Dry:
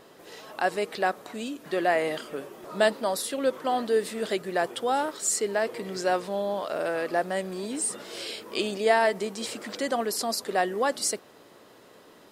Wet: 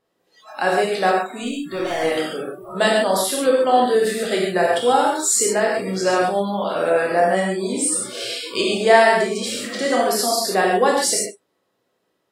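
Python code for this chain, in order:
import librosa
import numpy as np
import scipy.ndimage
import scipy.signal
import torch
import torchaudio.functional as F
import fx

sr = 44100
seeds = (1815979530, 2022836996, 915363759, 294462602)

p1 = fx.overload_stage(x, sr, gain_db=30.5, at=(1.43, 2.03))
p2 = p1 + fx.echo_single(p1, sr, ms=95, db=-19.5, dry=0)
p3 = fx.rev_gated(p2, sr, seeds[0], gate_ms=170, shape='flat', drr_db=-3.0)
p4 = fx.noise_reduce_blind(p3, sr, reduce_db=27)
y = p4 * librosa.db_to_amplitude(4.5)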